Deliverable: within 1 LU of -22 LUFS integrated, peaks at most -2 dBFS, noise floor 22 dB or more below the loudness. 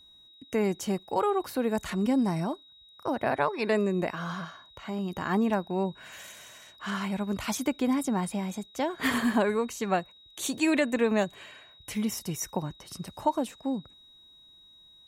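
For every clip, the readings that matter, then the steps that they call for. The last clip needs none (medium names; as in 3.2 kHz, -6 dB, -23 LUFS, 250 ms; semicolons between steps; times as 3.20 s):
steady tone 3.8 kHz; tone level -53 dBFS; loudness -29.5 LUFS; peak level -13.0 dBFS; loudness target -22.0 LUFS
-> band-stop 3.8 kHz, Q 30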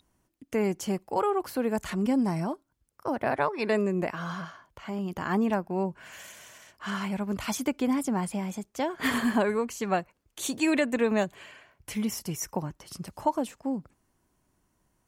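steady tone not found; loudness -29.5 LUFS; peak level -13.0 dBFS; loudness target -22.0 LUFS
-> trim +7.5 dB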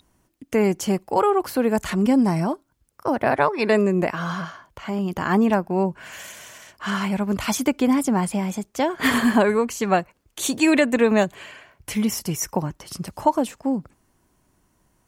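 loudness -22.0 LUFS; peak level -5.5 dBFS; noise floor -66 dBFS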